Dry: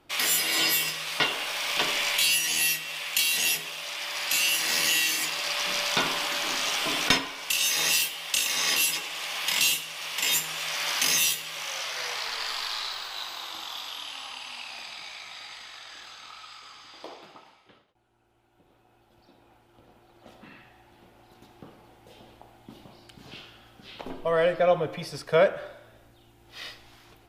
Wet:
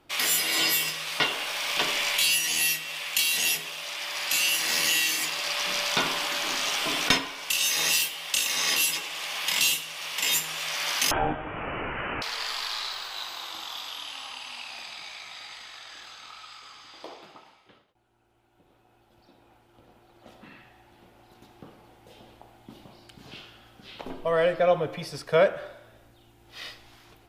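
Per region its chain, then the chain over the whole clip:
11.11–12.22 s: tilt EQ +2.5 dB/octave + frequency inversion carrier 3.5 kHz
whole clip: none

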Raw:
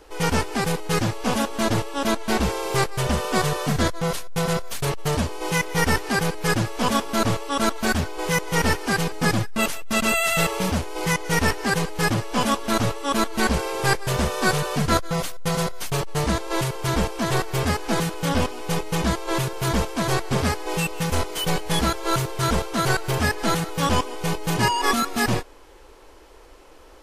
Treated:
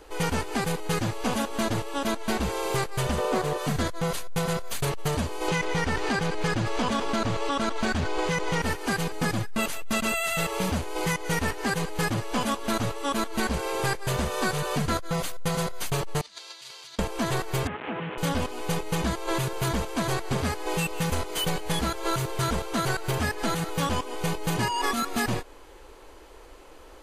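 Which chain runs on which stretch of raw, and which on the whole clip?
3.18–3.58 s: peaking EQ 480 Hz +8.5 dB 2.2 oct + loudspeaker Doppler distortion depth 0.17 ms
5.48–8.62 s: low-pass 6.4 kHz + level flattener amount 70%
16.21–16.99 s: compressor with a negative ratio -27 dBFS, ratio -0.5 + band-pass filter 4.5 kHz, Q 2.1
17.67–18.18 s: one-bit delta coder 16 kbps, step -24.5 dBFS + high-pass 140 Hz + compression, threshold -28 dBFS
whole clip: band-stop 5.4 kHz, Q 11; compression, threshold -23 dBFS

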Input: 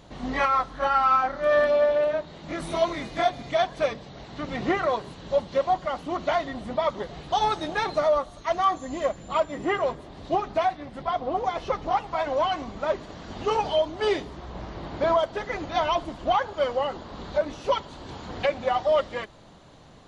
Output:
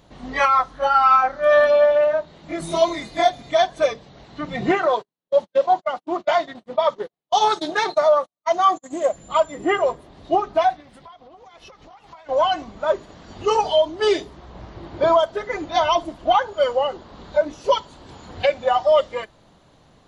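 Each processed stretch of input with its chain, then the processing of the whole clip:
4.71–9.13 s: high-pass 160 Hz + gate -36 dBFS, range -47 dB + loudspeaker Doppler distortion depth 0.2 ms
10.80–12.29 s: tilt shelf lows -4.5 dB, about 1.5 kHz + compression 20:1, threshold -39 dBFS
whole clip: spectral noise reduction 9 dB; dynamic bell 6.3 kHz, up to +5 dB, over -51 dBFS, Q 1.5; trim +6 dB

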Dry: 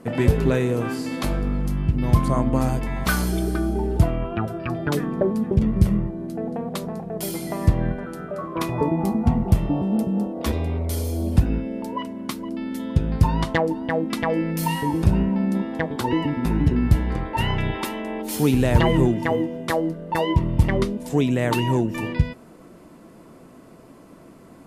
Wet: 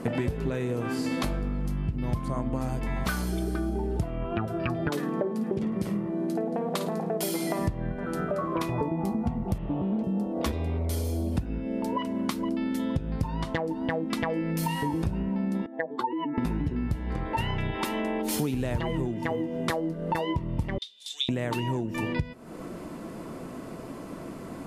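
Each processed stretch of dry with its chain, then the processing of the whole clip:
4.89–7.59 s: high-pass 240 Hz + flutter echo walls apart 9.3 m, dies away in 0.3 s
9.58–10.04 s: low-pass 3 kHz + loudspeaker Doppler distortion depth 0.19 ms
15.66–16.38 s: spectral contrast enhancement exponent 2 + high-pass 580 Hz
20.78–21.29 s: ladder band-pass 3.7 kHz, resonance 85% + treble shelf 4.1 kHz +12 dB
whole clip: treble shelf 10 kHz -4 dB; compression 10:1, threshold -33 dBFS; trim +7.5 dB

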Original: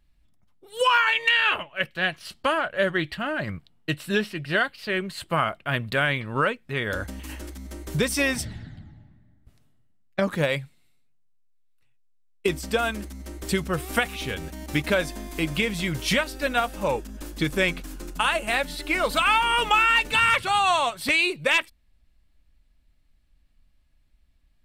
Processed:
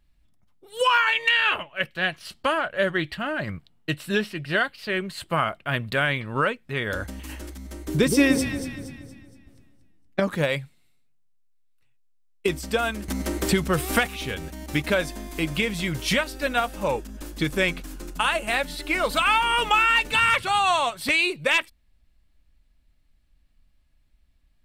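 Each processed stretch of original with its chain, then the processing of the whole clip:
7.88–10.20 s: peaking EQ 310 Hz +12 dB 0.66 oct + echo whose repeats swap between lows and highs 117 ms, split 860 Hz, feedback 64%, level -6 dB
13.08–14.07 s: waveshaping leveller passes 1 + three bands compressed up and down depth 70%
whole clip: none

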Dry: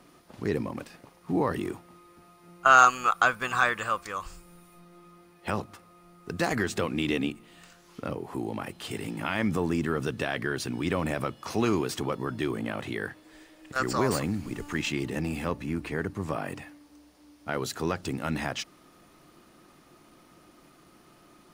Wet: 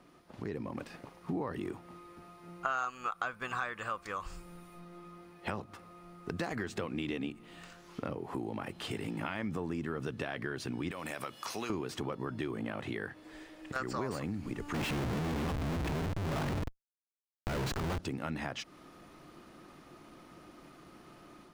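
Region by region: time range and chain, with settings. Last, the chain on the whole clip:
10.91–11.70 s: tilt EQ +3.5 dB/octave + compression 2:1, threshold -35 dBFS
14.74–17.99 s: bass shelf 190 Hz +10.5 dB + Schmitt trigger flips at -37 dBFS
whole clip: compression 4:1, threshold -37 dBFS; treble shelf 5.4 kHz -9 dB; level rider gain up to 6.5 dB; trim -4 dB

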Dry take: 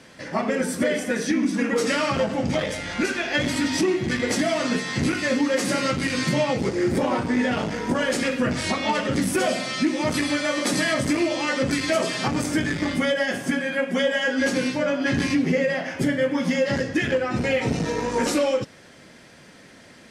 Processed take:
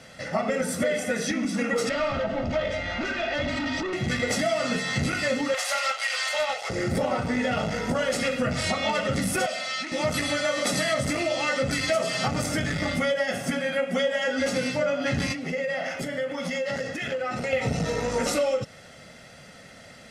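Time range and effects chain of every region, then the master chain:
1.89–3.93 s: hard clipper -24.5 dBFS + distance through air 170 m + comb 3.2 ms, depth 52%
5.54–6.70 s: steep high-pass 630 Hz + peaking EQ 3.1 kHz +4 dB 0.32 oct + loudspeaker Doppler distortion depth 0.16 ms
9.46–9.92 s: high-pass 1.3 kHz 6 dB/octave + distance through air 55 m + transformer saturation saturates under 860 Hz
15.32–17.53 s: peaking EQ 68 Hz -14 dB 2.2 oct + compression, threshold -26 dBFS
whole clip: comb 1.5 ms, depth 60%; compression 2.5:1, threshold -23 dBFS

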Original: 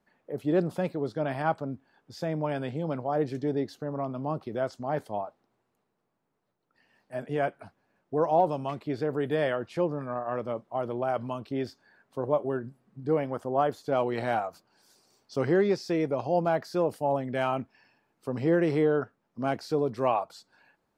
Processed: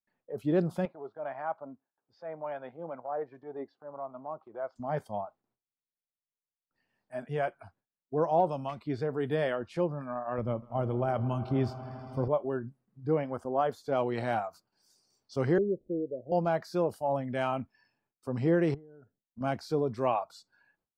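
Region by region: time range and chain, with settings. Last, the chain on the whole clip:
0.85–4.76 s: transient shaper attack -7 dB, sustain -3 dB + band-pass filter 800 Hz, Q 0.71 + distance through air 68 m
10.38–12.28 s: bass shelf 170 Hz +11.5 dB + echo with a slow build-up 80 ms, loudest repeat 5, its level -18 dB
15.58–16.32 s: CVSD coder 32 kbps + steep low-pass 550 Hz 48 dB/octave + bass shelf 200 Hz -10 dB
18.74–19.41 s: boxcar filter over 38 samples + compression, threshold -39 dBFS + tape noise reduction on one side only encoder only
whole clip: gate with hold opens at -59 dBFS; spectral noise reduction 10 dB; bass shelf 130 Hz +9.5 dB; trim -3 dB

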